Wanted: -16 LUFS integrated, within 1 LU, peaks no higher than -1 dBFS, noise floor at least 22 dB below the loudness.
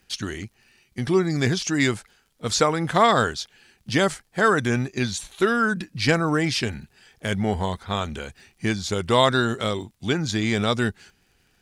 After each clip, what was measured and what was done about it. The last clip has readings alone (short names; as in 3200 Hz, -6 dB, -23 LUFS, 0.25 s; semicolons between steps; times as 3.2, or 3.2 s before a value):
ticks 41/s; loudness -23.0 LUFS; peak -5.0 dBFS; loudness target -16.0 LUFS
-> de-click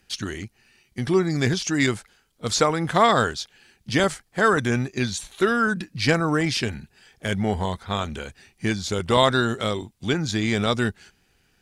ticks 0.17/s; loudness -23.0 LUFS; peak -5.0 dBFS; loudness target -16.0 LUFS
-> gain +7 dB; limiter -1 dBFS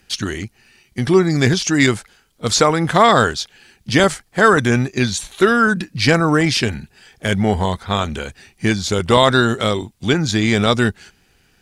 loudness -16.5 LUFS; peak -1.0 dBFS; noise floor -58 dBFS